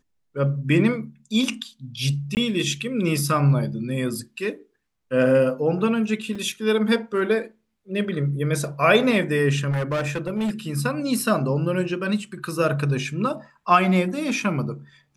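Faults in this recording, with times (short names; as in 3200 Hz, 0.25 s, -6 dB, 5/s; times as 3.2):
2.35–2.37 gap 19 ms
6.35 gap 4.6 ms
9.7–10.51 clipped -20.5 dBFS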